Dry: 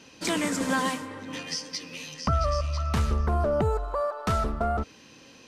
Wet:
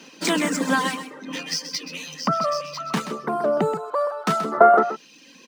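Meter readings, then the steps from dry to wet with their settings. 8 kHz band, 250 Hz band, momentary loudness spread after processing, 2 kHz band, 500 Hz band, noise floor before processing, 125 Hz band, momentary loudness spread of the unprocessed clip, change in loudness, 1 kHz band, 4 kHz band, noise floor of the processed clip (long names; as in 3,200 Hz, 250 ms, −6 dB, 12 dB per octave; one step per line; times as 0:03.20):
+4.0 dB, +4.5 dB, 15 LU, +6.5 dB, +7.5 dB, −52 dBFS, −7.0 dB, 10 LU, +6.0 dB, +9.0 dB, +5.5 dB, −50 dBFS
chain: running median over 3 samples
gain on a spectral selection 0:04.52–0:04.94, 310–2,100 Hz +11 dB
reverb reduction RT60 1 s
Chebyshev high-pass filter 160 Hz, order 5
on a send: single-tap delay 129 ms −11 dB
on the sum: level +6.5 dB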